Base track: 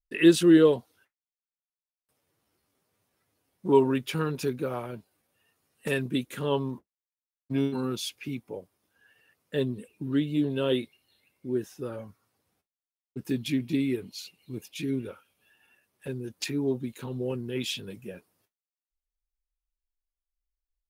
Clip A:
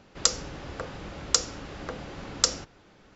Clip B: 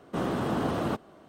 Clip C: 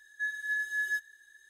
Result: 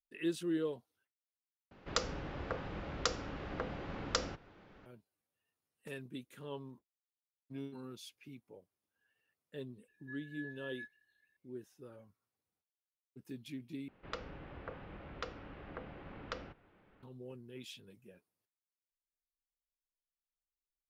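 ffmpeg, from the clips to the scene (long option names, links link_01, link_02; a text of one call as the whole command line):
ffmpeg -i bed.wav -i cue0.wav -i cue1.wav -i cue2.wav -filter_complex "[1:a]asplit=2[link_01][link_02];[0:a]volume=-17.5dB[link_03];[link_01]lowpass=2900[link_04];[3:a]lowpass=2100[link_05];[link_02]lowpass=frequency=2800:width=0.5412,lowpass=frequency=2800:width=1.3066[link_06];[link_03]asplit=3[link_07][link_08][link_09];[link_07]atrim=end=1.714[link_10];[link_04]atrim=end=3.15,asetpts=PTS-STARTPTS,volume=-3dB[link_11];[link_08]atrim=start=4.856:end=13.884[link_12];[link_06]atrim=end=3.15,asetpts=PTS-STARTPTS,volume=-10dB[link_13];[link_09]atrim=start=17.026[link_14];[link_05]atrim=end=1.49,asetpts=PTS-STARTPTS,volume=-16dB,afade=type=in:duration=0.004:curve=hsin,afade=type=out:start_time=1.486:duration=0.004:curve=hsin,adelay=9880[link_15];[link_10][link_11]acrossfade=duration=0.004:curve1=hsin:curve2=hsin[link_16];[link_16][link_12]acrossfade=duration=0.004:curve1=hsin:curve2=hsin[link_17];[link_17][link_13]acrossfade=duration=0.004:curve1=hsin:curve2=hsin[link_18];[link_18][link_14]acrossfade=duration=0.004:curve1=hsin:curve2=hsin[link_19];[link_19][link_15]amix=inputs=2:normalize=0" out.wav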